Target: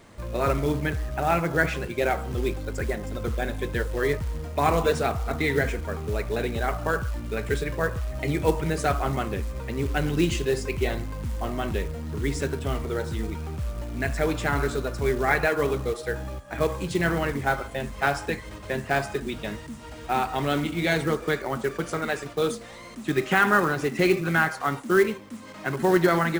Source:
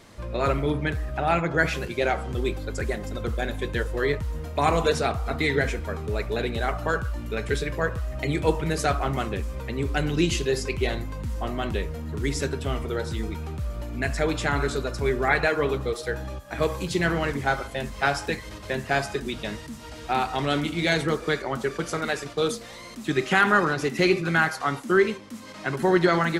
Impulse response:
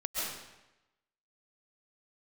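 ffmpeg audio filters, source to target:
-af "aresample=22050,aresample=44100,equalizer=f=4.9k:w=0.94:g=-6,acrusher=bits=5:mode=log:mix=0:aa=0.000001"

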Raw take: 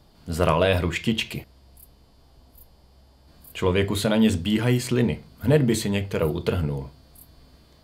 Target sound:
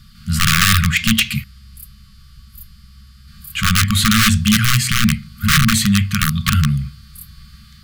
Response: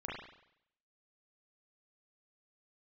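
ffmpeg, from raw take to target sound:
-af "aeval=exprs='(mod(5.31*val(0)+1,2)-1)/5.31':c=same,apsyclip=18.5dB,afftfilt=real='re*(1-between(b*sr/4096,230,1100))':imag='im*(1-between(b*sr/4096,230,1100))':win_size=4096:overlap=0.75,volume=-6.5dB"

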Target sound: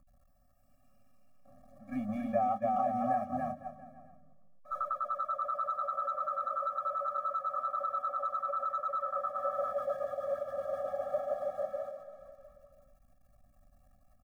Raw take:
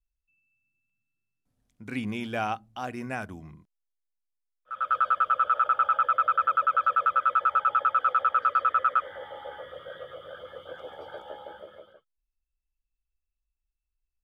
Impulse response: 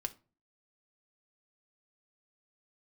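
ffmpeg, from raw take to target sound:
-af "aeval=exprs='val(0)+0.5*0.0133*sgn(val(0))':c=same,aecho=1:1:280|504|683.2|826.6|941.2:0.631|0.398|0.251|0.158|0.1,volume=16dB,asoftclip=hard,volume=-16dB,bass=f=250:g=-9,treble=f=4k:g=10,bandreject=f=650:w=13,acompressor=threshold=-29dB:ratio=20,agate=range=-11dB:threshold=-35dB:ratio=16:detection=peak,firequalizer=gain_entry='entry(140,0);entry(490,11);entry(2900,-25)':delay=0.05:min_phase=1,afftfilt=real='re*eq(mod(floor(b*sr/1024/270),2),0)':imag='im*eq(mod(floor(b*sr/1024/270),2),0)':win_size=1024:overlap=0.75"

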